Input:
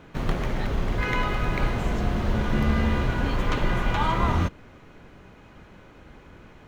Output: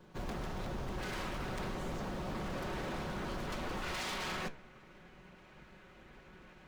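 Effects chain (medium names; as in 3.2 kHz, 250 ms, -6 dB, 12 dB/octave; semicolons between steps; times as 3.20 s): comb filter that takes the minimum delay 5.4 ms; peaking EQ 2.1 kHz -7 dB 1.3 oct, from 3.82 s +3 dB; wavefolder -27 dBFS; flange 1.6 Hz, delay 9.5 ms, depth 8.2 ms, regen +82%; trim -2.5 dB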